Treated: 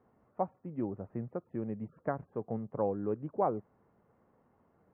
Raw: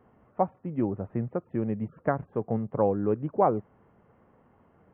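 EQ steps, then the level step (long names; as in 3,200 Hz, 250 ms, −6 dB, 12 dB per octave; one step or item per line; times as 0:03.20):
low-pass filter 2,100 Hz 6 dB per octave
high-frequency loss of the air 65 metres
low-shelf EQ 140 Hz −4.5 dB
−6.5 dB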